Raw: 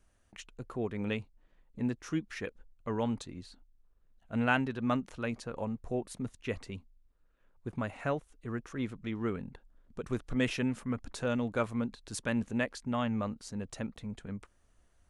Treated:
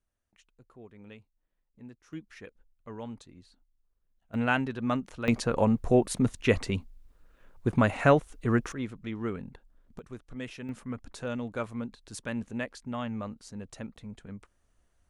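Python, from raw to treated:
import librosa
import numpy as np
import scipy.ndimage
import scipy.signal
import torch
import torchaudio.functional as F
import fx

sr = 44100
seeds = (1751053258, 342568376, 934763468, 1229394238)

y = fx.gain(x, sr, db=fx.steps((0.0, -15.0), (2.13, -8.0), (4.34, 1.5), (5.28, 12.0), (8.72, 0.5), (9.99, -9.0), (10.69, -2.5)))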